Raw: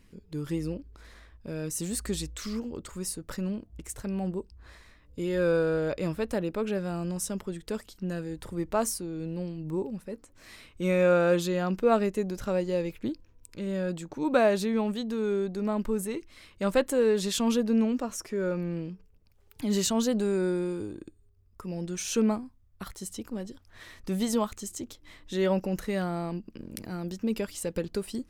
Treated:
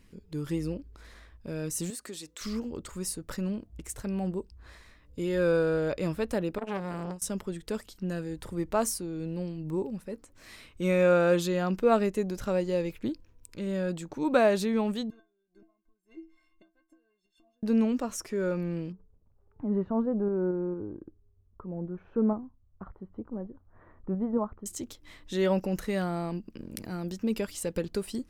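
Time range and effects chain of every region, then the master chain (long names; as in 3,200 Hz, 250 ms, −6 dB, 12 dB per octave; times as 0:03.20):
0:01.90–0:02.41: high-pass filter 290 Hz + downward compressor 2 to 1, threshold −42 dBFS
0:06.58–0:07.22: noise gate with hold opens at −22 dBFS, closes at −28 dBFS + saturating transformer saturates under 1,000 Hz
0:15.10–0:17.63: low-pass filter 1,800 Hz 6 dB per octave + gate with flip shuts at −23 dBFS, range −25 dB + stiff-string resonator 320 Hz, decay 0.3 s, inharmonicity 0.03
0:18.92–0:24.66: low-pass filter 1,200 Hz 24 dB per octave + shaped tremolo saw up 4.4 Hz, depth 30%
whole clip: no processing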